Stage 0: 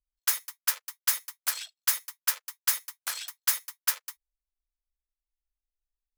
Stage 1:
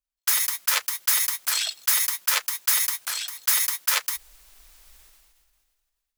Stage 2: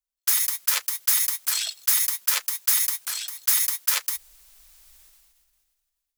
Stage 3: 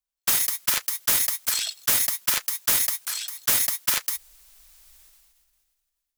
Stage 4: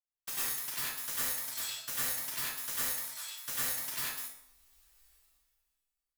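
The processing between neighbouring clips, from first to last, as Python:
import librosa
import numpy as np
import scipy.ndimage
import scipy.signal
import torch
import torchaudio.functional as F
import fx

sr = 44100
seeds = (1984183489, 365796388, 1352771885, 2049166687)

y1 = fx.low_shelf(x, sr, hz=430.0, db=-9.0)
y1 = fx.sustainer(y1, sr, db_per_s=29.0)
y1 = y1 * librosa.db_to_amplitude(2.0)
y2 = fx.high_shelf(y1, sr, hz=3800.0, db=7.0)
y2 = y2 * librosa.db_to_amplitude(-5.5)
y3 = (np.mod(10.0 ** (12.0 / 20.0) * y2 + 1.0, 2.0) - 1.0) / 10.0 ** (12.0 / 20.0)
y4 = fx.comb_fb(y3, sr, f0_hz=130.0, decay_s=0.55, harmonics='all', damping=0.0, mix_pct=80)
y4 = fx.rev_plate(y4, sr, seeds[0], rt60_s=0.61, hf_ratio=0.5, predelay_ms=85, drr_db=-8.0)
y4 = y4 * librosa.db_to_amplitude(-8.0)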